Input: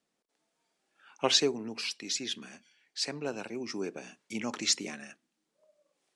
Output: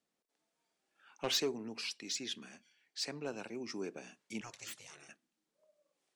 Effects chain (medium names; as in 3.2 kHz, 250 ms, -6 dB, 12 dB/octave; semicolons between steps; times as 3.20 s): saturation -21 dBFS, distortion -12 dB; 4.41–5.09 s: spectral gate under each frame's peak -15 dB weak; trim -5 dB